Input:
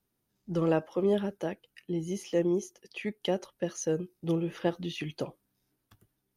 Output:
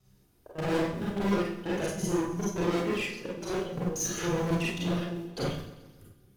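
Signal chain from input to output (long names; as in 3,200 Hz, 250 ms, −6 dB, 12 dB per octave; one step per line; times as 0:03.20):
slices reordered back to front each 92 ms, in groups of 5
low-shelf EQ 220 Hz +10 dB
hum removal 56.23 Hz, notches 6
gate pattern "xxxx.xx.x.xx" 129 BPM −24 dB
in parallel at −7 dB: floating-point word with a short mantissa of 2 bits
on the sum: flanger 1.6 Hz, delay 1.5 ms, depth 1.4 ms, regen −38%
tube saturation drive 38 dB, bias 0.3
on a send: echo with a time of its own for lows and highs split 330 Hz, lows 204 ms, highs 131 ms, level −15 dB
on the sum: four-comb reverb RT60 0.44 s, combs from 31 ms, DRR −5.5 dB
level +6 dB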